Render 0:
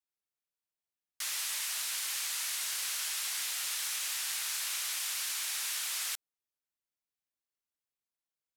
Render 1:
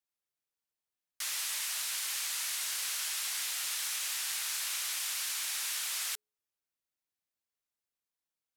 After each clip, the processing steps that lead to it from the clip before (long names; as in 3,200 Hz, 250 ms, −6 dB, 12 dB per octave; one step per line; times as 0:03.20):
hum removal 211.7 Hz, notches 2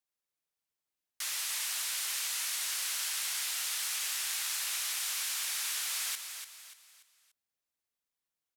repeating echo 291 ms, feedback 38%, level −8 dB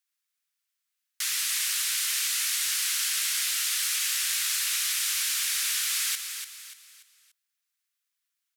high-pass filter 1,300 Hz 24 dB per octave
level +7 dB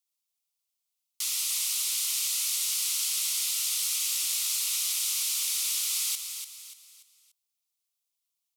phaser with its sweep stopped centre 690 Hz, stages 4